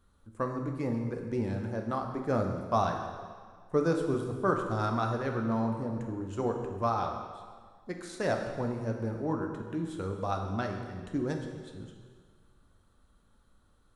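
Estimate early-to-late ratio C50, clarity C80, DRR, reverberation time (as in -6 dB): 5.0 dB, 6.5 dB, 2.5 dB, 1.7 s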